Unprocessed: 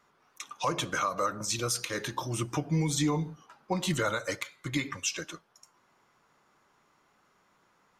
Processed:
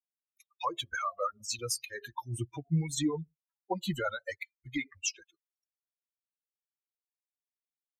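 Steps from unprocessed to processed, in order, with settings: per-bin expansion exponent 3; gain +2 dB

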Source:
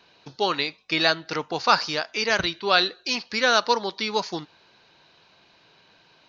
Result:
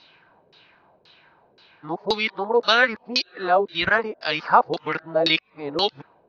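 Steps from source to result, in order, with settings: whole clip reversed; LFO low-pass saw down 1.9 Hz 420–4900 Hz

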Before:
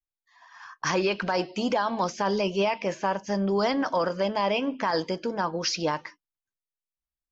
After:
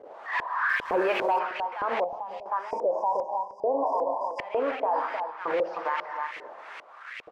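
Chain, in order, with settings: delta modulation 64 kbps, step -26.5 dBFS; LFO high-pass saw up 1.1 Hz 390–2500 Hz; gate -31 dBFS, range -7 dB; 2.42–4.39 spectral delete 1100–4800 Hz; non-linear reverb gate 0.38 s falling, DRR 11.5 dB; LFO low-pass saw up 2.5 Hz 460–2500 Hz; 3.45–3.87 high shelf 3600 Hz -10.5 dB; outdoor echo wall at 53 m, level -12 dB; 0.69–1.39 sample leveller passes 1; limiter -18 dBFS, peak gain reduction 12 dB; 2.04–2.46 EQ curve 160 Hz 0 dB, 370 Hz -10 dB, 810 Hz -4 dB, 1500 Hz -29 dB, 2700 Hz -11 dB

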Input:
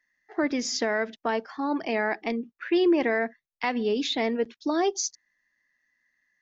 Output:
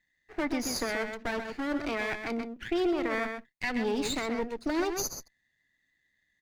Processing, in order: minimum comb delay 0.46 ms; outdoor echo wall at 22 m, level -7 dB; limiter -18.5 dBFS, peak gain reduction 7 dB; gain -2 dB

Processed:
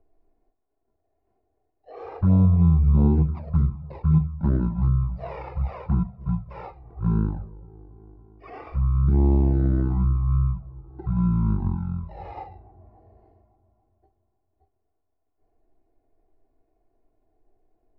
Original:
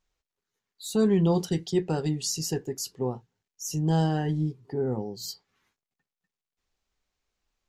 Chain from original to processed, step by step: FFT order left unsorted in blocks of 16 samples; synth low-pass 1600 Hz, resonance Q 1.7; speed mistake 78 rpm record played at 33 rpm; on a send: dark delay 0.282 s, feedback 56%, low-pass 970 Hz, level -21.5 dB; on the sum: envelope flanger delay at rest 2.8 ms, full sweep at -18 dBFS; three-band squash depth 40%; gain +6 dB

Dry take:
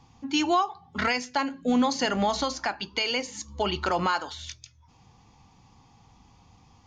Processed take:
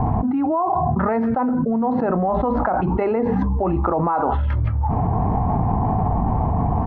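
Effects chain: LPF 1200 Hz 24 dB/oct; pitch shift -1.5 st; fast leveller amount 100%

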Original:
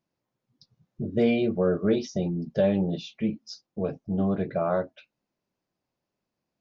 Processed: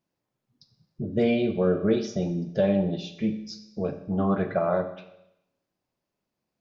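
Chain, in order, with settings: 3.95–4.59 bell 1200 Hz +11.5 dB 1.2 oct; Schroeder reverb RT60 0.84 s, combs from 29 ms, DRR 9 dB

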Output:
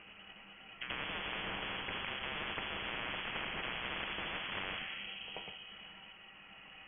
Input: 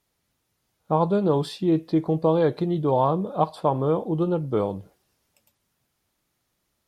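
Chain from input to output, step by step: gliding pitch shift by -4 st ending unshifted; HPF 120 Hz 24 dB/oct; in parallel at +1 dB: negative-ratio compressor -31 dBFS; on the sum: limiter -17 dBFS, peak gain reduction 10.5 dB; resonator 580 Hz, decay 0.17 s, harmonics all, mix 80%; one-sided clip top -36.5 dBFS; pre-echo 84 ms -13 dB; shoebox room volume 490 m³, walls mixed, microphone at 0.5 m; inverted band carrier 3100 Hz; spectral compressor 10:1; gain -1 dB

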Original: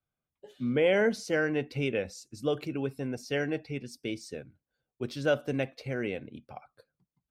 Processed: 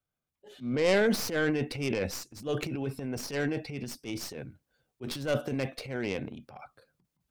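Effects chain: tracing distortion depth 0.14 ms; transient shaper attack -9 dB, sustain +9 dB

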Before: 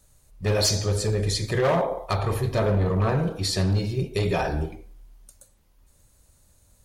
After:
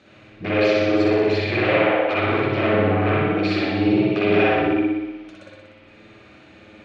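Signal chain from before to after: compressor 2.5:1, threshold -39 dBFS, peak gain reduction 13.5 dB; sine folder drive 10 dB, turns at -23 dBFS; speaker cabinet 230–3500 Hz, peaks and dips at 320 Hz +8 dB, 480 Hz -4 dB, 940 Hz -8 dB, 2400 Hz +7 dB; flutter echo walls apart 10.4 m, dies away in 1.1 s; reverb, pre-delay 51 ms, DRR -4 dB; gain +1.5 dB

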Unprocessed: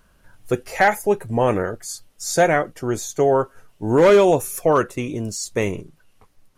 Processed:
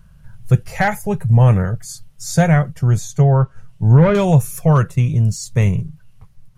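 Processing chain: 2.99–4.15 treble ducked by the level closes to 2200 Hz, closed at -12 dBFS; resonant low shelf 210 Hz +12.5 dB, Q 3; gain -1 dB

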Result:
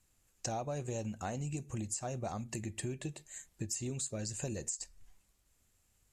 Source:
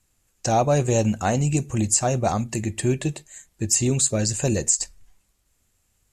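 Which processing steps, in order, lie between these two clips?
compressor 5:1, threshold -32 dBFS, peak gain reduction 15.5 dB; gain -5 dB

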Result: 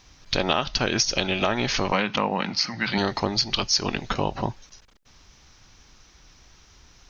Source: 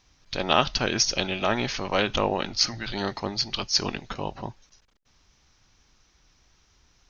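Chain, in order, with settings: compressor 8:1, threshold -28 dBFS, peak gain reduction 14 dB; 1.92–2.98 speaker cabinet 160–5400 Hz, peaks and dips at 190 Hz +8 dB, 370 Hz -7 dB, 630 Hz -4 dB, 980 Hz +4 dB, 2100 Hz +5 dB, 3500 Hz -6 dB; gain +9 dB

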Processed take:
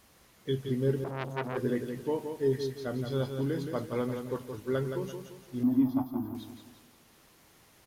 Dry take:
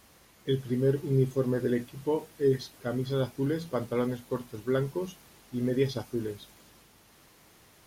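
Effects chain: 5.63–6.35 EQ curve 110 Hz 0 dB, 150 Hz -11 dB, 280 Hz +13 dB, 450 Hz -29 dB, 670 Hz +9 dB, 1100 Hz +9 dB, 1700 Hz -16 dB, 8400 Hz -19 dB, 14000 Hz +8 dB; on a send: feedback echo 0.171 s, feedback 39%, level -7 dB; 1.04–1.57 on the sum: core saturation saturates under 1600 Hz; gain -3 dB

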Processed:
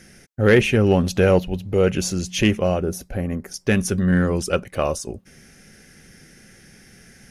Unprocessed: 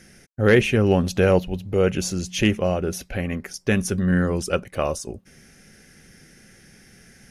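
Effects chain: 2.82–3.52 bell 2700 Hz -12 dB 1.8 oct; in parallel at -11.5 dB: overloaded stage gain 15.5 dB

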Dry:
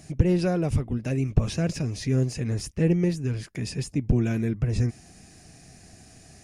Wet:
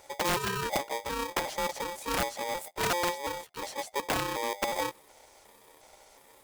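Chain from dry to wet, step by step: trilling pitch shifter +8.5 st, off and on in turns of 0.363 s; wrapped overs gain 15 dB; polarity switched at an audio rate 700 Hz; gain -6.5 dB

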